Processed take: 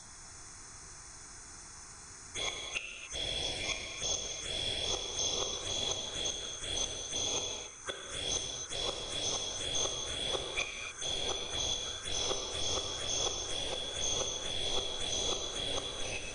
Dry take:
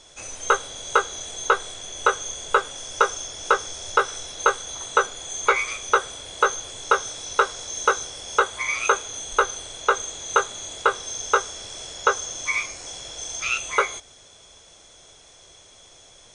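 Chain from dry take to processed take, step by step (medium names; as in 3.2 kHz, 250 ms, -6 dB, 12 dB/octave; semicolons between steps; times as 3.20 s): reverse the whole clip; inverted gate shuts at -21 dBFS, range -36 dB; echo that smears into a reverb 735 ms, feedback 58%, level -14 dB; touch-sensitive phaser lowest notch 450 Hz, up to 1.6 kHz, full sweep at -31.5 dBFS; gated-style reverb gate 310 ms flat, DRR 2.5 dB; trim +3 dB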